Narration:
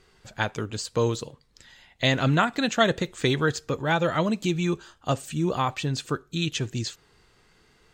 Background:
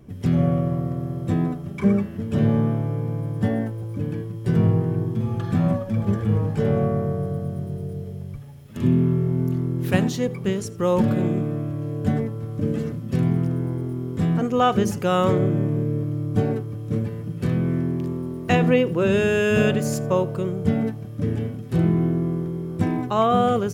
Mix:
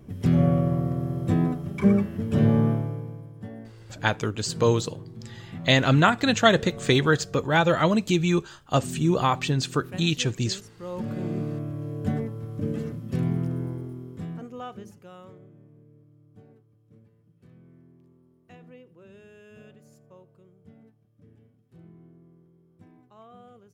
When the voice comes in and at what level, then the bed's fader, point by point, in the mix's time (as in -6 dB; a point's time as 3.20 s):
3.65 s, +3.0 dB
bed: 2.71 s -0.5 dB
3.33 s -17 dB
10.80 s -17 dB
11.42 s -5 dB
13.63 s -5 dB
15.48 s -31 dB